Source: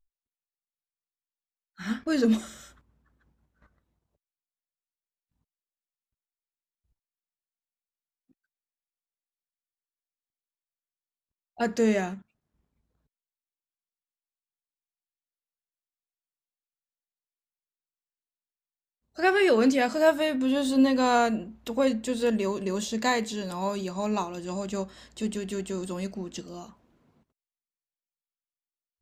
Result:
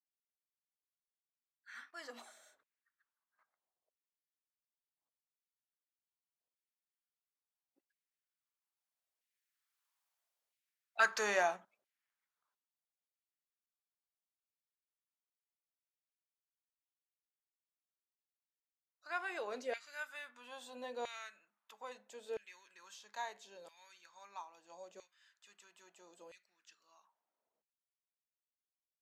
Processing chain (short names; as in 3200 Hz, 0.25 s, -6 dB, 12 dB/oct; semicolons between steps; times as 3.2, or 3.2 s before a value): Doppler pass-by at 9.94, 22 m/s, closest 9.6 m; LFO high-pass saw down 0.76 Hz 510–2300 Hz; gain +8.5 dB